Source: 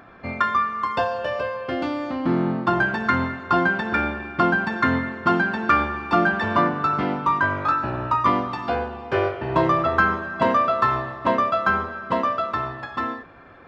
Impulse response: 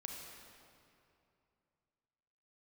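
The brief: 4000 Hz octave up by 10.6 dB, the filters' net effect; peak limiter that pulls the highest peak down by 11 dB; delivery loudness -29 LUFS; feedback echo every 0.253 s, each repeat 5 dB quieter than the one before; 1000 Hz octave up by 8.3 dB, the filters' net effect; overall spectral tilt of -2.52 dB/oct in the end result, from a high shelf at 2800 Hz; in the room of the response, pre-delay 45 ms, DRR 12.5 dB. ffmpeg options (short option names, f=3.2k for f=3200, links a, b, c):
-filter_complex "[0:a]equalizer=f=1k:t=o:g=8.5,highshelf=f=2.8k:g=9,equalizer=f=4k:t=o:g=6,alimiter=limit=-9dB:level=0:latency=1,aecho=1:1:253|506|759|1012|1265|1518|1771:0.562|0.315|0.176|0.0988|0.0553|0.031|0.0173,asplit=2[a][b];[1:a]atrim=start_sample=2205,adelay=45[c];[b][c]afir=irnorm=-1:irlink=0,volume=-10dB[d];[a][d]amix=inputs=2:normalize=0,volume=-11.5dB"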